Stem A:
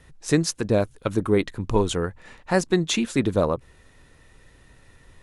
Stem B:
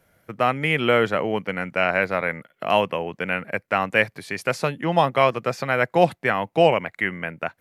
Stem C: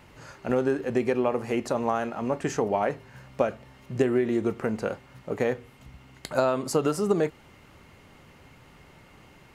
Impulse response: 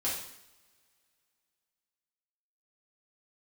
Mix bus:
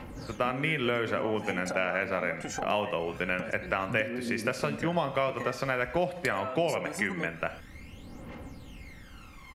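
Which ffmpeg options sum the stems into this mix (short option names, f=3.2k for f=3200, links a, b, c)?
-filter_complex "[0:a]adelay=900,volume=-18dB[a];[1:a]equalizer=f=810:t=o:w=0.21:g=-5.5,volume=-4dB,asplit=3[b][c][d];[c]volume=-13.5dB[e];[2:a]acompressor=threshold=-29dB:ratio=6,aphaser=in_gain=1:out_gain=1:delay=1.7:decay=0.74:speed=0.24:type=triangular,volume=-0.5dB[f];[d]apad=whole_len=270323[g];[a][g]sidechaincompress=threshold=-43dB:ratio=8:attack=16:release=103[h];[h][f]amix=inputs=2:normalize=0,aecho=1:1:3.8:0.49,acompressor=threshold=-31dB:ratio=6,volume=0dB[i];[3:a]atrim=start_sample=2205[j];[e][j]afir=irnorm=-1:irlink=0[k];[b][i][k]amix=inputs=3:normalize=0,acompressor=threshold=-25dB:ratio=4"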